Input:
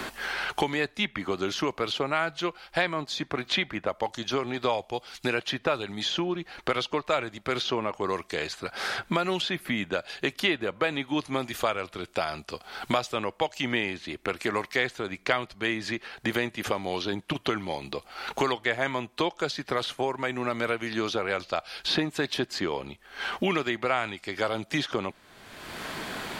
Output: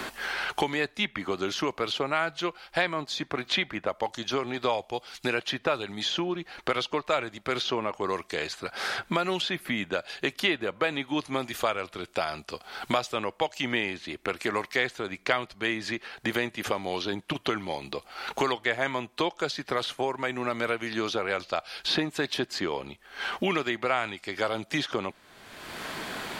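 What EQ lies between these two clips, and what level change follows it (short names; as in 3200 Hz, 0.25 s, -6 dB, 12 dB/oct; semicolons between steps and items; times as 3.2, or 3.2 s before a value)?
low shelf 200 Hz -3.5 dB; 0.0 dB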